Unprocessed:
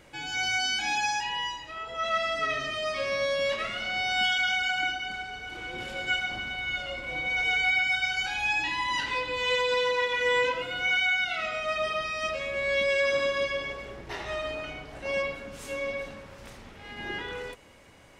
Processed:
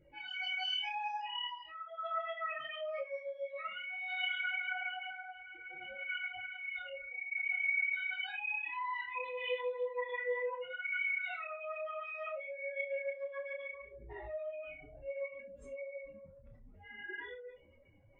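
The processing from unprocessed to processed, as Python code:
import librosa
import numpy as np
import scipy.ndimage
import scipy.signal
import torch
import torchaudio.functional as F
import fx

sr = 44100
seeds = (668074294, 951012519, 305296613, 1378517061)

y = fx.spec_expand(x, sr, power=3.4)
y = fx.cheby1_lowpass(y, sr, hz=6200.0, order=8, at=(10.09, 12.27))
y = fx.room_early_taps(y, sr, ms=(37, 64), db=(-11.5, -15.5))
y = fx.detune_double(y, sr, cents=22)
y = y * 10.0 ** (-6.0 / 20.0)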